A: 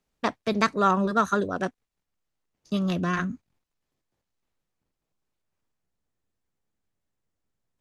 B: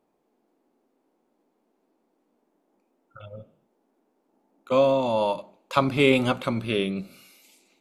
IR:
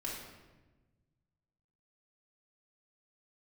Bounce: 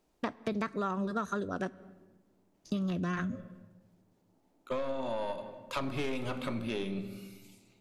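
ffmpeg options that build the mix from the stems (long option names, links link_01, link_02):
-filter_complex "[0:a]acrossover=split=2500[link_01][link_02];[link_02]acompressor=threshold=-42dB:ratio=4:attack=1:release=60[link_03];[link_01][link_03]amix=inputs=2:normalize=0,equalizer=frequency=910:width_type=o:width=2.3:gain=-4,volume=2.5dB,asplit=2[link_04][link_05];[link_05]volume=-21dB[link_06];[1:a]aeval=exprs='(tanh(7.08*val(0)+0.35)-tanh(0.35))/7.08':channel_layout=same,volume=-5.5dB,asplit=2[link_07][link_08];[link_08]volume=-8dB[link_09];[2:a]atrim=start_sample=2205[link_10];[link_06][link_09]amix=inputs=2:normalize=0[link_11];[link_11][link_10]afir=irnorm=-1:irlink=0[link_12];[link_04][link_07][link_12]amix=inputs=3:normalize=0,acompressor=threshold=-31dB:ratio=6"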